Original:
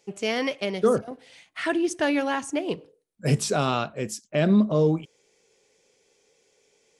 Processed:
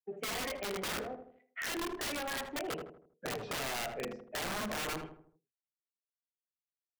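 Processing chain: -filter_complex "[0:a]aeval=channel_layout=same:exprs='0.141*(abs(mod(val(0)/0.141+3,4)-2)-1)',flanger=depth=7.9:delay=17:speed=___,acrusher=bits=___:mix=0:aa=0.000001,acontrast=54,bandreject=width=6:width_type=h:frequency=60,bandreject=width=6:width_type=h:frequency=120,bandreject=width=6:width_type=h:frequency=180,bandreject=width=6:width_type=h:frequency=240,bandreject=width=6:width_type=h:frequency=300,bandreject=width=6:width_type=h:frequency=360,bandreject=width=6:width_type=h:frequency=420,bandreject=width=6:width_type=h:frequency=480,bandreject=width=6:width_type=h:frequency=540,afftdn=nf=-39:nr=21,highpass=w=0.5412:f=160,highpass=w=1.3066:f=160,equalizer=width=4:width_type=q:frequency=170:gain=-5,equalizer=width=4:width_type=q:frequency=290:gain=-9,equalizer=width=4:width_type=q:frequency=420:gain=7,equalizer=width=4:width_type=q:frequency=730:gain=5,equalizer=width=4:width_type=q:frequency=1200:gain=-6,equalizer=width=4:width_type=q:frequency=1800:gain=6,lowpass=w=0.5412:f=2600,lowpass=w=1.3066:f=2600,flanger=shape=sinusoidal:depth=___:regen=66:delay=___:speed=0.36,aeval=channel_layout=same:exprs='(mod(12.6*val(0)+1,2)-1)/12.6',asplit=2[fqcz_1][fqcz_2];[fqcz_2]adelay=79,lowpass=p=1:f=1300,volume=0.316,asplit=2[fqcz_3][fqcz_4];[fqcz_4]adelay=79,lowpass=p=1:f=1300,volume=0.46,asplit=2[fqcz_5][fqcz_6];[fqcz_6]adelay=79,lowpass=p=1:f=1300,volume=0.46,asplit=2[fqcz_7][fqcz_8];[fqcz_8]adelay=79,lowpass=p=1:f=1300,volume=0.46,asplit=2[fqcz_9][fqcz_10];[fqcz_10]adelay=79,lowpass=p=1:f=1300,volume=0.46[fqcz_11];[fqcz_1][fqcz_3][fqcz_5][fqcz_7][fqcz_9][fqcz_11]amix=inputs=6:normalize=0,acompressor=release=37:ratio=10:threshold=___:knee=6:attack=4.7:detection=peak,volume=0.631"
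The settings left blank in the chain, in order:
0.89, 7, 5.6, 6.5, 0.0282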